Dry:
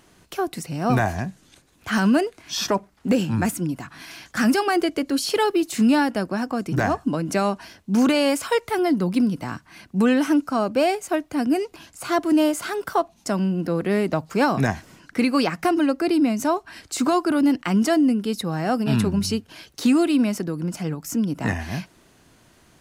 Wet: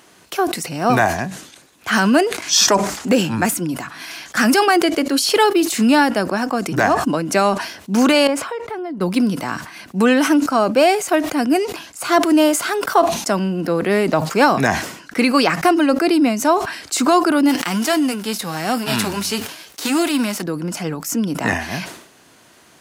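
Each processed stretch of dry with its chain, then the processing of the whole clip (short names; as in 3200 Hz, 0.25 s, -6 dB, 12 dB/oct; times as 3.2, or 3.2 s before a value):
2.42–3.09 bell 6900 Hz +10 dB 0.96 oct + upward compressor, threshold -28 dBFS
8.27–9.01 LPF 1100 Hz 6 dB/oct + compressor 4:1, threshold -31 dBFS
17.48–20.41 spectral whitening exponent 0.6 + flange 1 Hz, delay 0.4 ms, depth 7 ms, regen -56%
whole clip: de-esser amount 35%; HPF 380 Hz 6 dB/oct; sustainer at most 83 dB/s; gain +8 dB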